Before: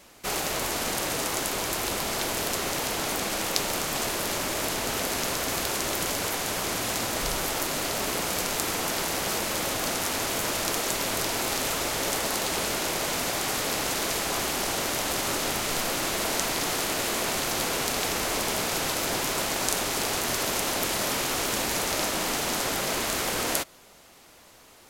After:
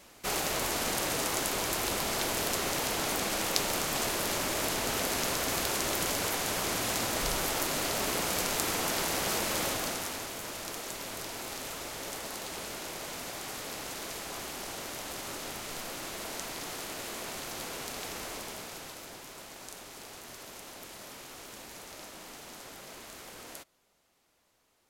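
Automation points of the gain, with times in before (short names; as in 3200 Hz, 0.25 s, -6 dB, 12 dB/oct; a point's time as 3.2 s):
9.65 s -2.5 dB
10.34 s -11.5 dB
18.24 s -11.5 dB
19.21 s -19 dB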